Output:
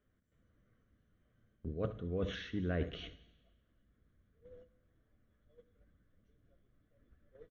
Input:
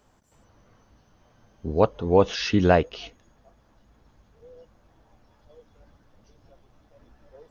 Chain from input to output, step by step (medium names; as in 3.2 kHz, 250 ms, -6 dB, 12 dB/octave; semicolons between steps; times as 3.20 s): low-pass 5.5 kHz 24 dB/octave; peaking EQ 2.6 kHz -10 dB 0.28 oct; static phaser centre 2.1 kHz, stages 4; delay 74 ms -21.5 dB; reverse; compression 8:1, threshold -32 dBFS, peak gain reduction 15.5 dB; reverse; gate -51 dBFS, range -11 dB; on a send at -14.5 dB: reverberation RT60 1.1 s, pre-delay 3 ms; on the sum: trim -2 dB